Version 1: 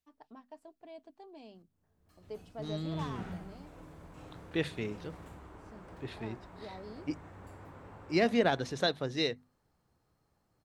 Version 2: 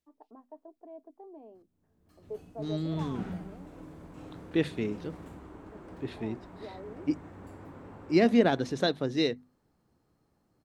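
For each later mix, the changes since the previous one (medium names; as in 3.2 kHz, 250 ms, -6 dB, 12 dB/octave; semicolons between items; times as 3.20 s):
first voice: add Butterworth band-pass 600 Hz, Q 0.8; master: add peaking EQ 270 Hz +8 dB 1.5 oct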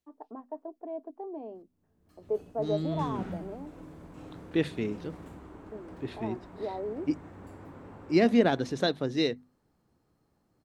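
first voice +9.5 dB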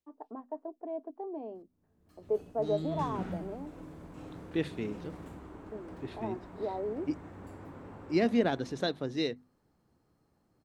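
second voice -4.5 dB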